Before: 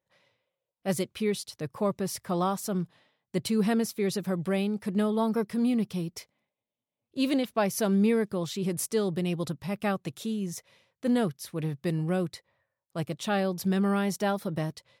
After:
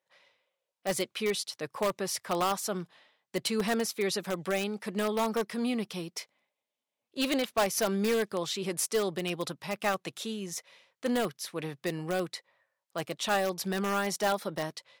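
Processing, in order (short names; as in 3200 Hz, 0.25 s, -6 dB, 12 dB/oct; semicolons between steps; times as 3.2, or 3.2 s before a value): weighting filter A; in parallel at -6 dB: wrapped overs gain 23 dB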